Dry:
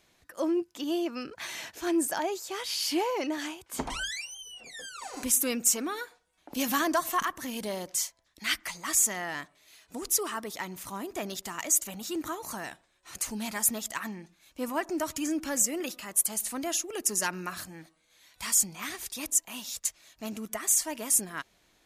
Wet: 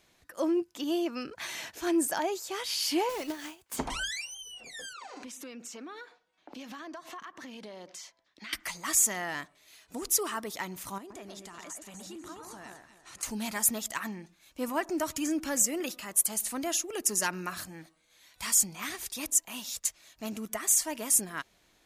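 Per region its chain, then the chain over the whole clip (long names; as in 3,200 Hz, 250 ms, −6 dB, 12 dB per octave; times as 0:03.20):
0:03.09–0:03.77: one scale factor per block 3 bits + transient designer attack +7 dB, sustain −7 dB + tuned comb filter 220 Hz, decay 0.22 s, mix 50%
0:04.93–0:08.53: three-way crossover with the lows and the highs turned down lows −18 dB, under 160 Hz, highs −22 dB, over 5,600 Hz + downward compressor, threshold −41 dBFS
0:10.98–0:13.23: low-pass filter 11,000 Hz 24 dB per octave + downward compressor 3 to 1, threshold −46 dBFS + delay that swaps between a low-pass and a high-pass 122 ms, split 1,800 Hz, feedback 54%, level −3.5 dB
whole clip: no processing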